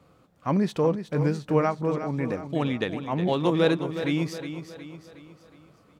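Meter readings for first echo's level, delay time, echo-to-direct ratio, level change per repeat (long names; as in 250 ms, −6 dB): −10.0 dB, 364 ms, −9.0 dB, −6.5 dB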